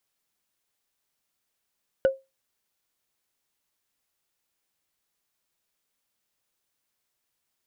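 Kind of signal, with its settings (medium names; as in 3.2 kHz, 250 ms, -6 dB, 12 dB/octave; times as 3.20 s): wood hit, lowest mode 535 Hz, decay 0.22 s, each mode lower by 11.5 dB, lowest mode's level -13 dB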